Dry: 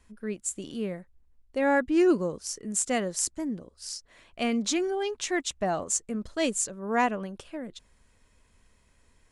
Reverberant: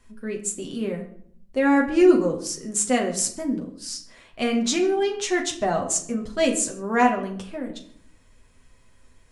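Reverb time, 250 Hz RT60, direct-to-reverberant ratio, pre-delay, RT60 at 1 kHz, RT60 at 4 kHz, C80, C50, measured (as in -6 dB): 0.60 s, 0.85 s, 0.5 dB, 8 ms, 0.55 s, 0.40 s, 13.5 dB, 10.5 dB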